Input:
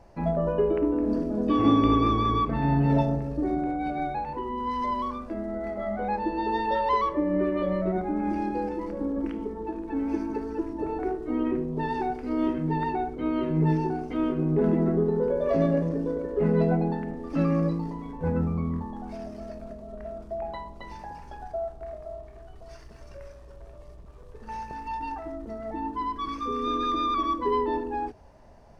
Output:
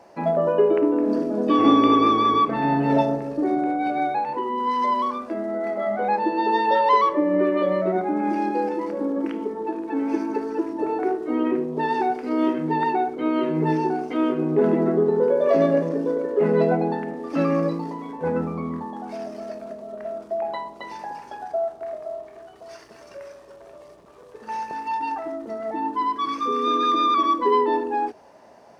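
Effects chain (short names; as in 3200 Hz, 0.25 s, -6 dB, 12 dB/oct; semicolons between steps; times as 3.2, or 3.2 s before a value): HPF 290 Hz 12 dB/oct; gain +7 dB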